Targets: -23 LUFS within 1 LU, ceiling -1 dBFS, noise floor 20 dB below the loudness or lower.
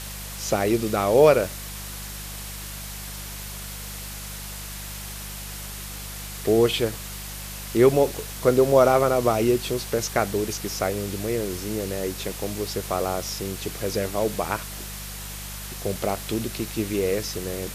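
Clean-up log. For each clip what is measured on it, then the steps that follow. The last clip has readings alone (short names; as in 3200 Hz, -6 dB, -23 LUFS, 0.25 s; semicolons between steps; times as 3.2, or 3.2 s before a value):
hum 50 Hz; harmonics up to 200 Hz; hum level -36 dBFS; noise floor -36 dBFS; noise floor target -45 dBFS; loudness -25.0 LUFS; peak -4.0 dBFS; loudness target -23.0 LUFS
-> de-hum 50 Hz, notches 4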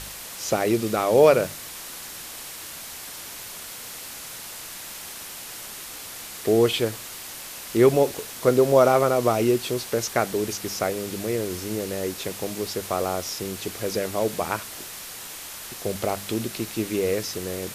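hum none; noise floor -38 dBFS; noise floor target -46 dBFS
-> noise print and reduce 8 dB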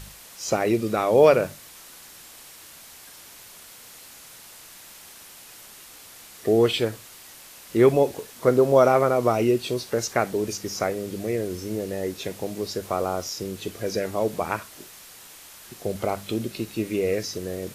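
noise floor -46 dBFS; loudness -24.0 LUFS; peak -4.0 dBFS; loudness target -23.0 LUFS
-> gain +1 dB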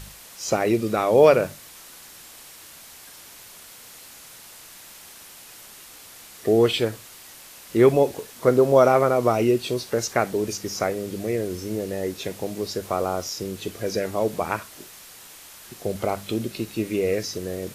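loudness -23.0 LUFS; peak -3.0 dBFS; noise floor -45 dBFS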